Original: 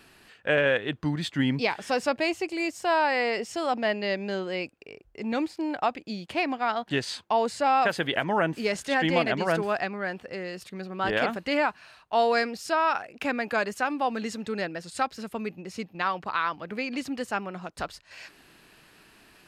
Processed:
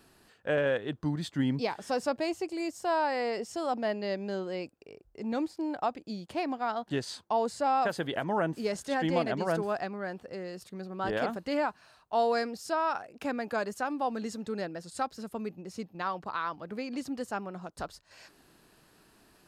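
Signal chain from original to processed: bell 2400 Hz -9.5 dB 1.3 oct; gain -3 dB

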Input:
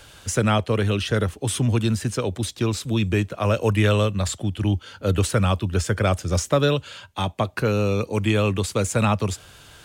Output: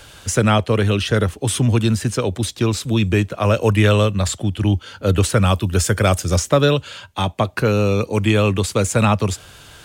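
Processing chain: 5.44–6.34 high shelf 9200 Hz -> 5400 Hz +11 dB; gain +4.5 dB

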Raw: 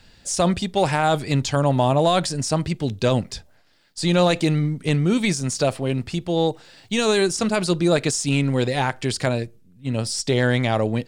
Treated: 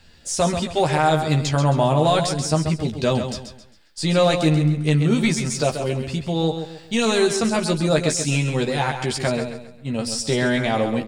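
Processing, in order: doubler 13 ms -4.5 dB; feedback echo 0.134 s, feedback 35%, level -8 dB; gain -1.5 dB

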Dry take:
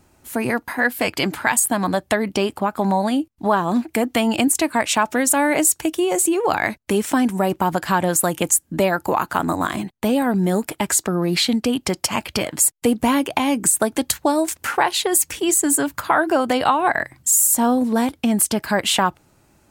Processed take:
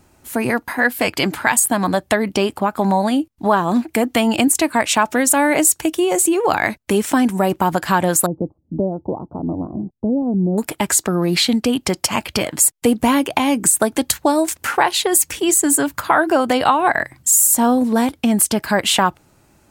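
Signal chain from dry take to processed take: 8.26–10.58 Gaussian blur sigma 15 samples; gain +2.5 dB

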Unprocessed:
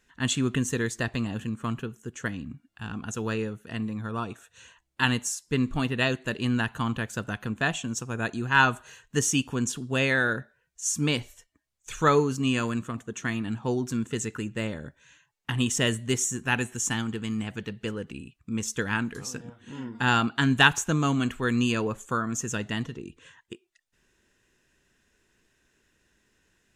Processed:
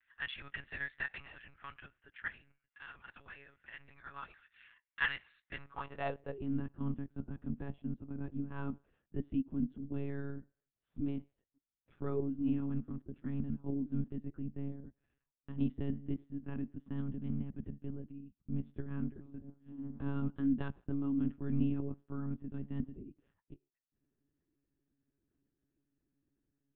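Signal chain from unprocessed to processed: 3.08–3.8 compressor 6:1, threshold -32 dBFS, peak gain reduction 8 dB; band-pass sweep 1900 Hz -> 230 Hz, 5.48–6.7; monotone LPC vocoder at 8 kHz 140 Hz; gain -4 dB

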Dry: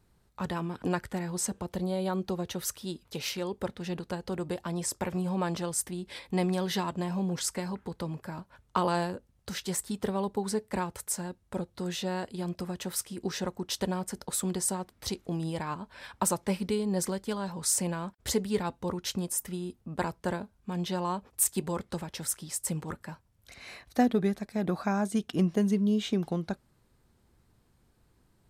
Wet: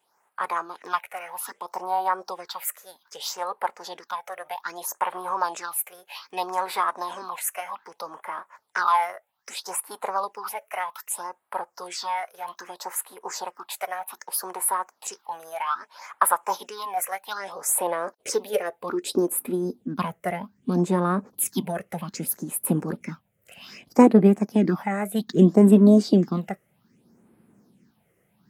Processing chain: phaser stages 6, 0.63 Hz, lowest notch 240–4800 Hz; formant shift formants +4 st; high-pass sweep 930 Hz -> 200 Hz, 17.12–20.01; gain +5.5 dB

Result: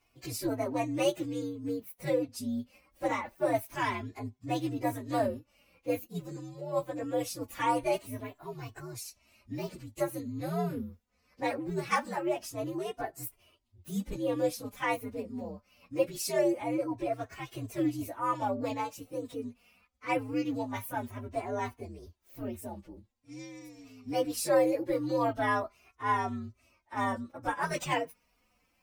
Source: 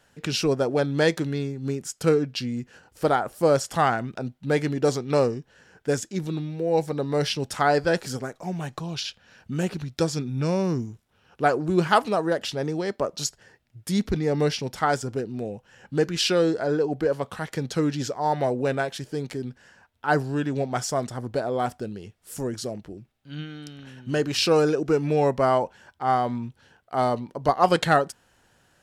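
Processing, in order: inharmonic rescaling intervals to 124%; flange 0.23 Hz, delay 2.7 ms, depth 1.5 ms, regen -5%; gain -2.5 dB

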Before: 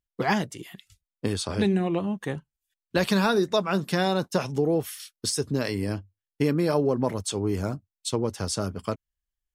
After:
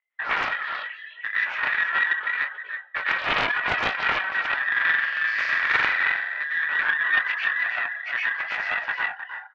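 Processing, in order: band inversion scrambler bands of 2000 Hz; in parallel at +0.5 dB: limiter -19.5 dBFS, peak gain reduction 9.5 dB; on the sum: mistuned SSB +110 Hz 460–3100 Hz; compressor 6:1, threshold -25 dBFS, peak gain reduction 10 dB; on a send: echo 0.314 s -6 dB; on the sum: plate-style reverb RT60 0.64 s, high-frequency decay 0.85×, pre-delay 90 ms, DRR -5.5 dB; reverb removal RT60 0.68 s; chorus voices 2, 0.74 Hz, delay 22 ms, depth 4.5 ms; 4.71–6.44 flutter echo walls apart 7.6 m, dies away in 0.99 s; Doppler distortion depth 0.4 ms; gain +1.5 dB

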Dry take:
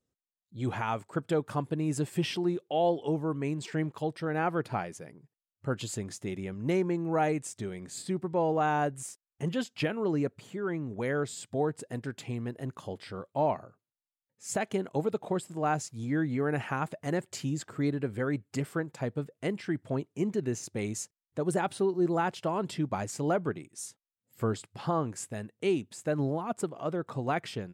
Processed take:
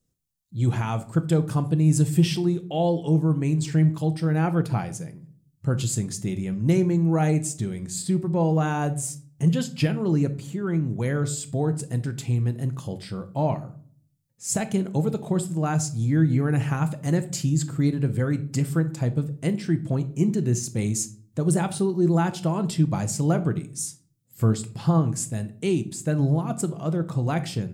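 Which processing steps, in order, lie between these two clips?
tone controls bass +13 dB, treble +11 dB; reverb RT60 0.55 s, pre-delay 6 ms, DRR 9 dB

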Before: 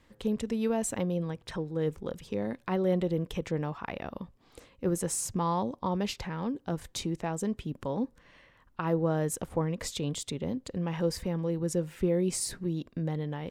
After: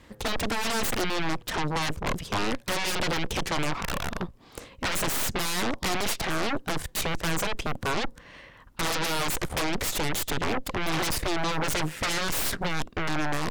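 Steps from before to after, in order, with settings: added harmonics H 3 -20 dB, 6 -10 dB, 8 -6 dB, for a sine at -15.5 dBFS; sine folder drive 15 dB, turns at -18 dBFS; gain -5.5 dB

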